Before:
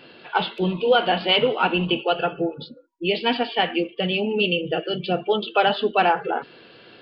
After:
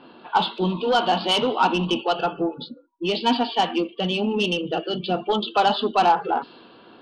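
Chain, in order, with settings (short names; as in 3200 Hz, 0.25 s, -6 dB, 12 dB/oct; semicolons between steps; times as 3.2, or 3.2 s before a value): soft clip -13 dBFS, distortion -16 dB; ten-band EQ 125 Hz -7 dB, 250 Hz +7 dB, 500 Hz -5 dB, 1000 Hz +10 dB, 2000 Hz -11 dB, 4000 Hz +7 dB; low-pass opened by the level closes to 2000 Hz, open at -17.5 dBFS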